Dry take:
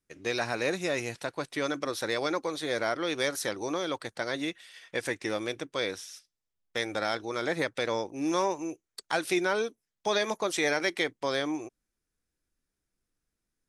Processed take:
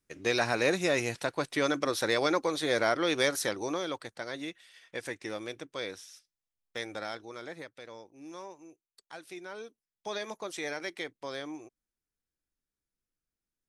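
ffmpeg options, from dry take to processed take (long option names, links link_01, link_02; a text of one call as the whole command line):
ffmpeg -i in.wav -af "volume=10.5dB,afade=type=out:start_time=3.17:duration=0.99:silence=0.375837,afade=type=out:start_time=6.84:duration=0.89:silence=0.281838,afade=type=in:start_time=9.41:duration=0.66:silence=0.398107" out.wav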